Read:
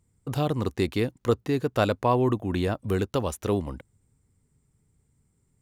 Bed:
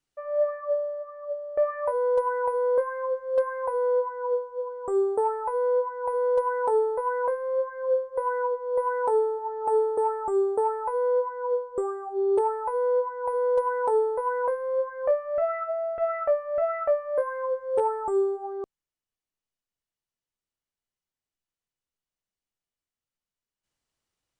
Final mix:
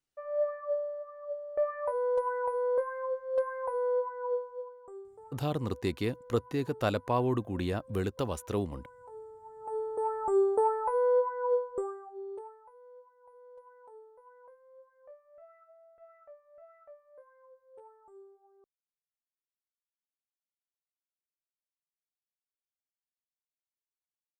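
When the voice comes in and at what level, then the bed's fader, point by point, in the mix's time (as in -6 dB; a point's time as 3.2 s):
5.05 s, -6.0 dB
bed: 4.51 s -5.5 dB
5.12 s -27.5 dB
8.99 s -27.5 dB
10.3 s -1.5 dB
11.63 s -1.5 dB
12.77 s -29.5 dB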